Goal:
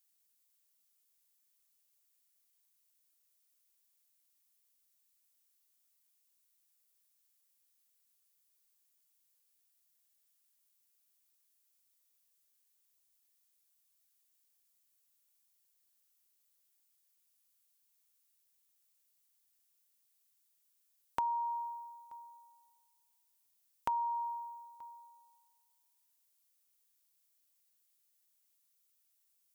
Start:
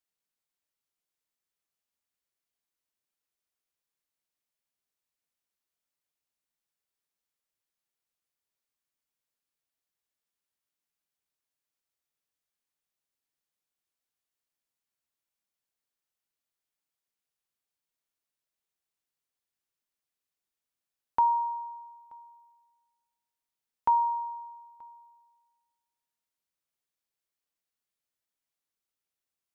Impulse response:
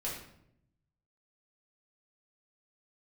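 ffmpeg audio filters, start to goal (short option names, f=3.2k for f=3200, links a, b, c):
-af "acompressor=threshold=-32dB:ratio=4,crystalizer=i=4.5:c=0,volume=-3dB"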